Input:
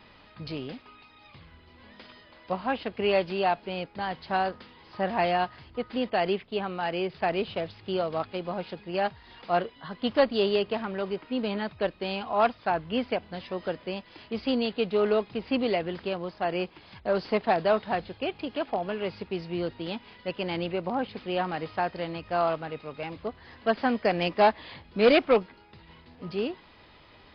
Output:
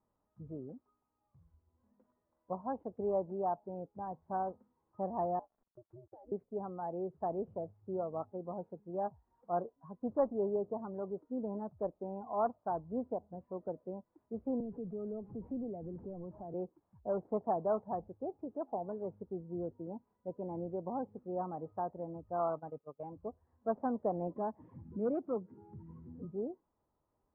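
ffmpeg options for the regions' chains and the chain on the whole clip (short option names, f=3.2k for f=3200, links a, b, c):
-filter_complex "[0:a]asettb=1/sr,asplit=3[a][b][c];[a]atrim=end=5.394[d];[b]atrim=start=5.39:end=6.32,asetpts=PTS-STARTPTS,afade=t=in:d=0.004:c=qsin,afade=t=out:st=0.926:d=0.004:c=qsin,acrusher=bits=6:mix=0:aa=0.5,acompressor=threshold=-37dB:ratio=16:attack=3.2:release=140:knee=1:detection=peak,aeval=exprs='val(0)*sin(2*PI*120*n/s)':c=same[e];[c]atrim=start=6.316[f];[d][e]acrossfade=d=0.004:c1=hsin:c2=qsin[g];[g][f]acrossfade=d=0.004:c1=qsin:c2=hsin,asettb=1/sr,asplit=3[h][i][j];[h]atrim=end=14.604[k];[i]atrim=start=14.6:end=16.54,asetpts=PTS-STARTPTS,afade=t=in:d=0.004:c=qsin,afade=t=out:st=1.936:d=0.004:c=qsin,aeval=exprs='val(0)+0.5*0.0168*sgn(val(0))':c=same,acrossover=split=250|3000[l][m][n];[m]acompressor=threshold=-39dB:ratio=3:attack=3.2:release=140:knee=2.83:detection=peak[o];[l][o][n]amix=inputs=3:normalize=0[p];[j]atrim=start=16.536[q];[k][p]acrossfade=d=0.004:c1=hsin:c2=qsin[r];[r][q]acrossfade=d=0.004:c1=qsin:c2=hsin,asettb=1/sr,asplit=3[s][t][u];[s]atrim=end=22.394[v];[t]atrim=start=22.39:end=23.12,asetpts=PTS-STARTPTS,afade=t=in:d=0.004:c=qsin,afade=t=out:st=0.726:d=0.004:c=qsin,agate=range=-14dB:threshold=-39dB:ratio=16:release=100:detection=peak,equalizer=f=3.2k:t=o:w=1.8:g=10[w];[u]atrim=start=23.116[x];[v][w]acrossfade=d=0.004:c1=hsin:c2=qsin[y];[y][x]acrossfade=d=0.004:c1=qsin:c2=hsin,asettb=1/sr,asplit=3[z][aa][ab];[z]atrim=end=24.364[ac];[aa]atrim=start=24.36:end=26.25,asetpts=PTS-STARTPTS,afade=t=in:d=0.004:c=qsin,afade=t=out:st=1.886:d=0.004:c=qsin,highpass=f=90:w=0.5412,highpass=f=90:w=1.3066,acompressor=mode=upward:threshold=-22dB:ratio=2.5:attack=3.2:release=140:knee=2.83:detection=peak,equalizer=f=720:w=0.79:g=-9.5[ad];[ab]atrim=start=26.246[ae];[ac][ad]acrossfade=d=0.004:c1=hsin:c2=qsin[af];[af][ae]acrossfade=d=0.004:c1=qsin:c2=hsin,lowpass=f=1.1k:w=0.5412,lowpass=f=1.1k:w=1.3066,afftdn=nr=17:nf=-37,volume=-8.5dB"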